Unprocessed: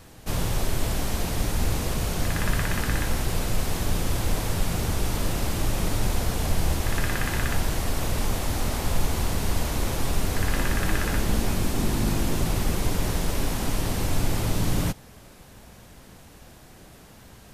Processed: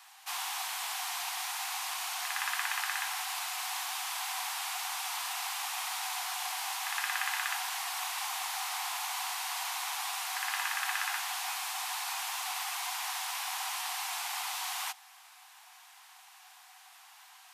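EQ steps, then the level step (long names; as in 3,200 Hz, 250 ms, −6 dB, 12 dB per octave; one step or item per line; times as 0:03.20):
Chebyshev high-pass with heavy ripple 730 Hz, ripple 3 dB
0.0 dB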